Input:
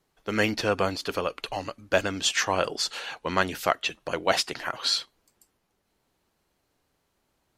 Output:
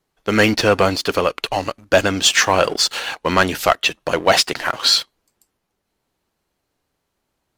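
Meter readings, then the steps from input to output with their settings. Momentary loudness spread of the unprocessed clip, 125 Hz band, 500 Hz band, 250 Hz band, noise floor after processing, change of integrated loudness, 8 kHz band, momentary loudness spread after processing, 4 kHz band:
7 LU, +10.5 dB, +10.0 dB, +10.5 dB, −75 dBFS, +10.0 dB, +10.5 dB, 6 LU, +10.5 dB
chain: leveller curve on the samples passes 2
level +3.5 dB

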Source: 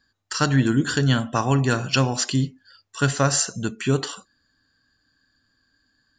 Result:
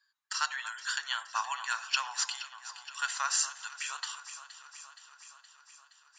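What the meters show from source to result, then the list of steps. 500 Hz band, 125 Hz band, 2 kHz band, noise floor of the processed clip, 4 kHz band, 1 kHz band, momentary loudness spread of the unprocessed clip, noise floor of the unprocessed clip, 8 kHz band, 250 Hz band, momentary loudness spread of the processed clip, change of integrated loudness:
−33.5 dB, below −40 dB, −6.0 dB, −67 dBFS, −6.0 dB, −7.5 dB, 10 LU, −69 dBFS, −6.5 dB, below −40 dB, 19 LU, −11.5 dB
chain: elliptic high-pass filter 930 Hz, stop band 70 dB
delay that swaps between a low-pass and a high-pass 235 ms, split 1,500 Hz, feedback 81%, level −12 dB
level −6 dB

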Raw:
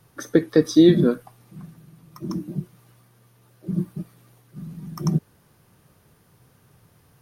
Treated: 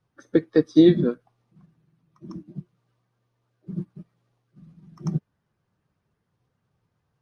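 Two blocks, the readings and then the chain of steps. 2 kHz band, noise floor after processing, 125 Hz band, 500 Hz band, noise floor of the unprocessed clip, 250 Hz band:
−4.0 dB, −77 dBFS, −4.0 dB, −2.0 dB, −59 dBFS, −2.0 dB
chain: spectral magnitudes quantised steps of 15 dB
high-frequency loss of the air 91 metres
expander for the loud parts 1.5 to 1, over −42 dBFS

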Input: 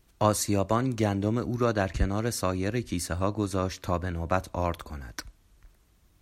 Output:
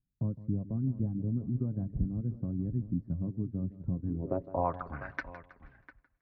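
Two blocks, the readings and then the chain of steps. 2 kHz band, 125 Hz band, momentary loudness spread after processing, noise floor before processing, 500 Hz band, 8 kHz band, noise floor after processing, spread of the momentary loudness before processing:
−9.0 dB, −2.5 dB, 7 LU, −63 dBFS, −11.0 dB, below −40 dB, −77 dBFS, 6 LU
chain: noise gate with hold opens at −49 dBFS
low-pass filter 4,400 Hz
reverb reduction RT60 0.59 s
comb filter 7.4 ms, depth 39%
downward compressor 1.5 to 1, threshold −33 dBFS, peak gain reduction 6.5 dB
slap from a distant wall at 120 metres, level −15 dB
low-pass filter sweep 190 Hz → 2,000 Hz, 0:03.96–0:05.04
feedback echo with a swinging delay time 160 ms, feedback 40%, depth 54 cents, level −16 dB
level −1.5 dB

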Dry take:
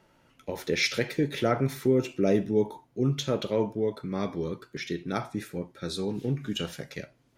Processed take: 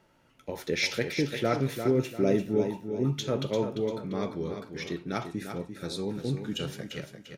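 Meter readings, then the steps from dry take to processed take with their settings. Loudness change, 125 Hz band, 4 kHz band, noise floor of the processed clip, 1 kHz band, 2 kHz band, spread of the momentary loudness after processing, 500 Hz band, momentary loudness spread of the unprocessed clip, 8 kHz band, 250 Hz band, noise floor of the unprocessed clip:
−1.5 dB, −1.0 dB, −1.5 dB, −64 dBFS, −1.5 dB, −1.0 dB, 11 LU, −1.5 dB, 11 LU, −1.5 dB, −1.5 dB, −65 dBFS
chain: repeating echo 345 ms, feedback 36%, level −8 dB
level −2 dB

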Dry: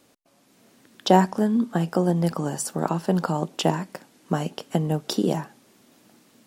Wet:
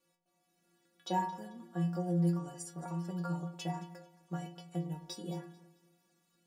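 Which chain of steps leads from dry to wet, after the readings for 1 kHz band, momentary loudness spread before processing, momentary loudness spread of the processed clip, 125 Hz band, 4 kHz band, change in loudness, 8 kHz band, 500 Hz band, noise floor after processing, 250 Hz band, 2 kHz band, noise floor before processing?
−13.5 dB, 12 LU, 13 LU, −10.0 dB, −16.5 dB, −13.0 dB, −15.5 dB, −18.0 dB, −78 dBFS, −13.5 dB, −15.5 dB, −61 dBFS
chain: stiff-string resonator 170 Hz, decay 0.46 s, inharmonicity 0.008
delay that swaps between a low-pass and a high-pass 110 ms, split 840 Hz, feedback 55%, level −12.5 dB
level −3 dB

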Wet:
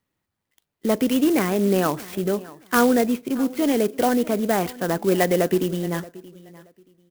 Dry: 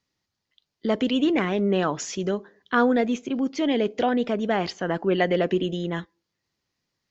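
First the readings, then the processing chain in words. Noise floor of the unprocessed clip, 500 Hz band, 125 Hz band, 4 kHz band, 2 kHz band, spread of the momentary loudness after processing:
−82 dBFS, +2.5 dB, +3.0 dB, −1.0 dB, +0.5 dB, 8 LU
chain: high-frequency loss of the air 150 metres
repeating echo 627 ms, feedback 22%, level −20 dB
converter with an unsteady clock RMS 0.049 ms
level +3 dB

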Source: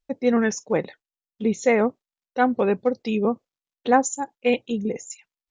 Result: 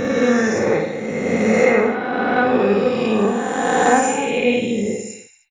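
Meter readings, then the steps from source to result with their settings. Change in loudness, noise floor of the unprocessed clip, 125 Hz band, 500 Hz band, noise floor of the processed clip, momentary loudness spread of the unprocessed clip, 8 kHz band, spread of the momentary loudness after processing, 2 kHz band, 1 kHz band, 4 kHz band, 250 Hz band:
+5.5 dB, below −85 dBFS, +7.5 dB, +6.5 dB, −43 dBFS, 13 LU, +4.5 dB, 7 LU, +9.5 dB, +6.0 dB, +9.0 dB, +5.5 dB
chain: peak hold with a rise ahead of every peak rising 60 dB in 2.42 s
thirty-one-band graphic EQ 100 Hz +9 dB, 630 Hz −5 dB, 1,000 Hz −4 dB, 6,300 Hz −11 dB
reverse bouncing-ball delay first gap 50 ms, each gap 1.1×, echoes 5

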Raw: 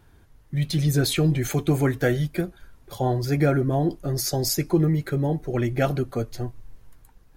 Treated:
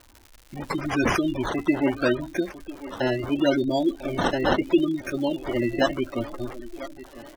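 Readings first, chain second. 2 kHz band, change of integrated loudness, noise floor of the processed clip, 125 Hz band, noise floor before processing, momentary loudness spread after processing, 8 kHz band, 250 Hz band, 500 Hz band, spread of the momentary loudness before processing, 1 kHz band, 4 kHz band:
+4.0 dB, −1.0 dB, −53 dBFS, −12.5 dB, −55 dBFS, 15 LU, −12.0 dB, +1.0 dB, +1.0 dB, 9 LU, +3.0 dB, −2.0 dB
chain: high-shelf EQ 2,600 Hz +5 dB
comb filter 3.3 ms, depth 81%
on a send: feedback echo with a high-pass in the loop 998 ms, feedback 49%, high-pass 180 Hz, level −14.5 dB
on the sum: sample-and-hold swept by an LFO 15×, swing 60% 0.74 Hz
low-shelf EQ 210 Hz −6 dB
gate on every frequency bin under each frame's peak −20 dB strong
surface crackle 200 per second −36 dBFS

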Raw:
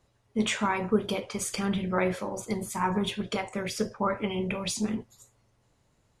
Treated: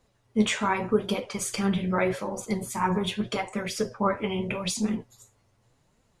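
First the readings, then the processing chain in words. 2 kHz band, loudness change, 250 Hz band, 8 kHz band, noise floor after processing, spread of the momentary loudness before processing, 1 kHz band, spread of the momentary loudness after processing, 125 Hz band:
+1.5 dB, +2.0 dB, +2.0 dB, +1.5 dB, −68 dBFS, 6 LU, +2.0 dB, 6 LU, +2.5 dB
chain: flanger 0.83 Hz, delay 3.7 ms, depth 8.5 ms, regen +44%
level +5.5 dB

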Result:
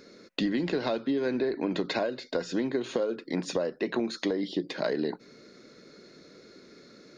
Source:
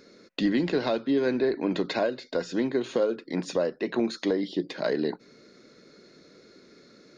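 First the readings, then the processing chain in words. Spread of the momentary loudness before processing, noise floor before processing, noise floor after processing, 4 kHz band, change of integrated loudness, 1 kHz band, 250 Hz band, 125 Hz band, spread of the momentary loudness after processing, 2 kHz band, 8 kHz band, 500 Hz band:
6 LU, −56 dBFS, −54 dBFS, −0.5 dB, −2.5 dB, −2.0 dB, −2.5 dB, −2.0 dB, 4 LU, −1.5 dB, can't be measured, −3.0 dB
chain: downward compressor, threshold −26 dBFS, peak gain reduction 6.5 dB
level +1.5 dB

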